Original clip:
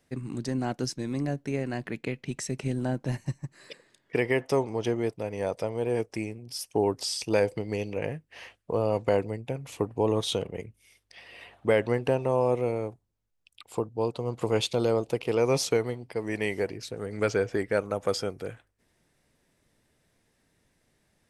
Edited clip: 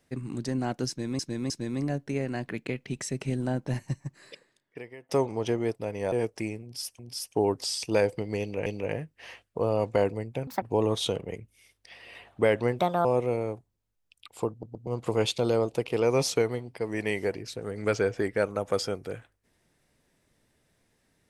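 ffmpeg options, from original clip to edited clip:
-filter_complex "[0:a]asplit=14[s0][s1][s2][s3][s4][s5][s6][s7][s8][s9][s10][s11][s12][s13];[s0]atrim=end=1.192[s14];[s1]atrim=start=0.878:end=1.192[s15];[s2]atrim=start=0.878:end=4.47,asetpts=PTS-STARTPTS,afade=t=out:st=2.702:d=0.89:c=qua:silence=0.0749894[s16];[s3]atrim=start=4.47:end=5.502,asetpts=PTS-STARTPTS,afade=t=in:d=0.004:c=hsin:silence=0.0749894[s17];[s4]atrim=start=5.878:end=6.752[s18];[s5]atrim=start=6.378:end=8.052[s19];[s6]atrim=start=7.788:end=9.604[s20];[s7]atrim=start=9.6:end=9.88,asetpts=PTS-STARTPTS,asetrate=82026,aresample=44100[s21];[s8]atrim=start=9.876:end=12.054[s22];[s9]atrim=start=12.05:end=12.4,asetpts=PTS-STARTPTS,asetrate=59535,aresample=44100,atrim=end_sample=11433,asetpts=PTS-STARTPTS[s23];[s10]atrim=start=12.396:end=13.982[s24];[s11]atrim=start=13.858:end=13.982[s25];[s12]atrim=start=13.858:end=13.982[s26];[s13]atrim=start=14.218[s27];[s14][s15]acrossfade=d=0.004:c1=hsin:c2=hsin[s28];[s16][s17]concat=n=2:v=0:a=1[s29];[s28][s29]acrossfade=d=0.004:c1=hsin:c2=hsin[s30];[s30][s18]acrossfade=d=0.004:c1=hsin:c2=hsin[s31];[s31][s19]acrossfade=d=0.004:c1=hsin:c2=hsin[s32];[s32][s20]acrossfade=d=0.004:c1=hsin:c2=hsin[s33];[s33][s21]acrossfade=d=0.004:c1=hsin:c2=hsin[s34];[s34][s22]acrossfade=d=0.004:c1=hsin:c2=hsin[s35];[s35][s23]acrossfade=d=0.004:c1=hsin:c2=hsin[s36];[s36][s24]acrossfade=d=0.004:c1=hsin:c2=hsin[s37];[s37][s25]acrossfade=d=0.004:c1=hsin:c2=hsin[s38];[s38][s26]acrossfade=d=0.004:c1=hsin:c2=hsin[s39];[s39][s27]acrossfade=d=0.004:c1=hsin:c2=hsin"

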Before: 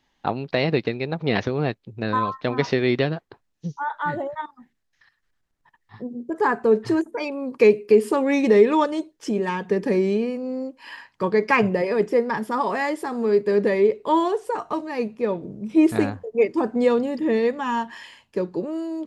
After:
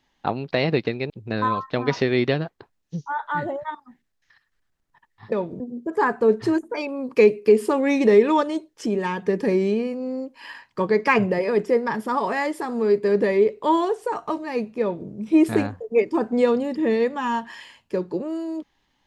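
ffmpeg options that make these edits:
-filter_complex "[0:a]asplit=4[s0][s1][s2][s3];[s0]atrim=end=1.102[s4];[s1]atrim=start=1.808:end=6.032[s5];[s2]atrim=start=15.238:end=15.522[s6];[s3]atrim=start=6.028[s7];[s4][s5]acrossfade=d=0.004:c1=hsin:c2=hsin[s8];[s8][s6]acrossfade=d=0.004:c1=hsin:c2=hsin[s9];[s9][s7]acrossfade=d=0.004:c1=hsin:c2=hsin"

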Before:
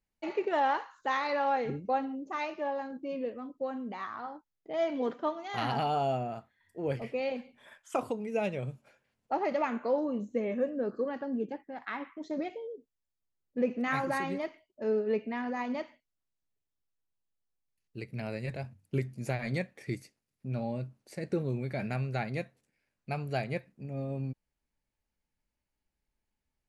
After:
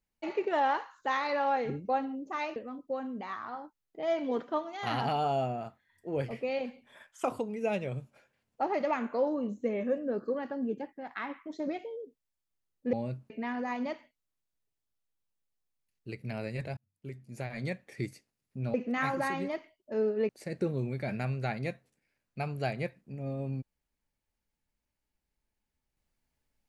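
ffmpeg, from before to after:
-filter_complex "[0:a]asplit=7[s0][s1][s2][s3][s4][s5][s6];[s0]atrim=end=2.562[s7];[s1]atrim=start=3.268:end=13.642[s8];[s2]atrim=start=20.628:end=21.002[s9];[s3]atrim=start=15.188:end=18.66,asetpts=PTS-STARTPTS,afade=t=out:st=3.468:d=0.004:c=hsin[s10];[s4]atrim=start=18.66:end=20.632,asetpts=PTS-STARTPTS,afade=t=in:d=1.22[s11];[s5]atrim=start=13.638:end=15.192[s12];[s6]atrim=start=20.998[s13];[s7][s8]acrossfade=d=0.004:c1=hsin:c2=hsin[s14];[s14][s9]acrossfade=d=0.004:c1=hsin:c2=hsin[s15];[s10][s11]concat=n=2:v=0:a=1[s16];[s15][s16]acrossfade=d=0.004:c1=hsin:c2=hsin[s17];[s17][s12]acrossfade=d=0.004:c1=hsin:c2=hsin[s18];[s18][s13]acrossfade=d=0.004:c1=hsin:c2=hsin"

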